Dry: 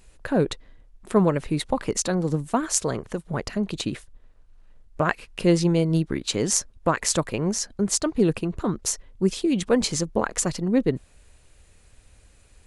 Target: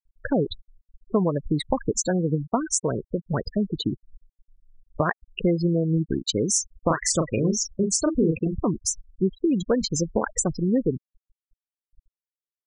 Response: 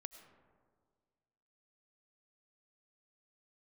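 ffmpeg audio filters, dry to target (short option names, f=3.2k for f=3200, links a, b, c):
-filter_complex "[0:a]acompressor=threshold=-22dB:ratio=4,asplit=3[a][b][c];[a]afade=t=out:st=6.53:d=0.02[d];[b]asplit=2[e][f];[f]adelay=37,volume=-4.5dB[g];[e][g]amix=inputs=2:normalize=0,afade=t=in:st=6.53:d=0.02,afade=t=out:st=8.61:d=0.02[h];[c]afade=t=in:st=8.61:d=0.02[i];[d][h][i]amix=inputs=3:normalize=0,afftfilt=real='re*gte(hypot(re,im),0.0708)':imag='im*gte(hypot(re,im),0.0708)':win_size=1024:overlap=0.75,volume=3.5dB"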